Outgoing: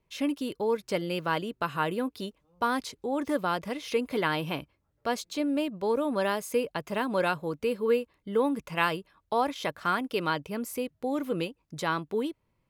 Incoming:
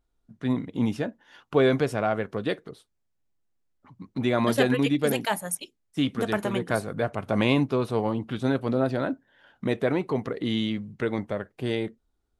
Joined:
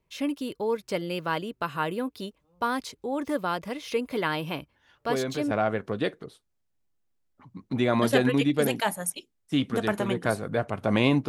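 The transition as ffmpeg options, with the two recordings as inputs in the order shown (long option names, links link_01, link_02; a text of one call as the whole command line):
ffmpeg -i cue0.wav -i cue1.wav -filter_complex "[1:a]asplit=2[link_01][link_02];[0:a]apad=whole_dur=11.28,atrim=end=11.28,atrim=end=5.512[link_03];[link_02]atrim=start=1.958:end=7.73[link_04];[link_01]atrim=start=1.16:end=1.96,asetpts=PTS-STARTPTS,volume=-9dB,afade=type=in:duration=0.004:curve=hsin,afade=type=out:start_time=0.796:duration=0.004:curve=hsin,adelay=4710[link_05];[link_03][link_04]acrossfade=duration=0.004:curve1=hsin:curve2=hsin[link_06];[link_06][link_05]amix=inputs=2:normalize=0" out.wav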